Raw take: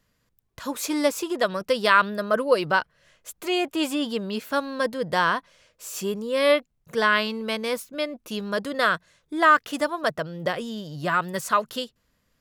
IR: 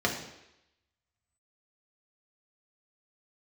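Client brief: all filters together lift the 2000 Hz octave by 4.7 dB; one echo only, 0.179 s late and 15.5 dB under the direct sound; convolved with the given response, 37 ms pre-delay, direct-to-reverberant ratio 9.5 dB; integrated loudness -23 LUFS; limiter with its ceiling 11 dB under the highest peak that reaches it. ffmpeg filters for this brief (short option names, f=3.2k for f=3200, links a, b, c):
-filter_complex "[0:a]equalizer=f=2k:t=o:g=6.5,alimiter=limit=-12.5dB:level=0:latency=1,aecho=1:1:179:0.168,asplit=2[a][b];[1:a]atrim=start_sample=2205,adelay=37[c];[b][c]afir=irnorm=-1:irlink=0,volume=-20.5dB[d];[a][d]amix=inputs=2:normalize=0,volume=2dB"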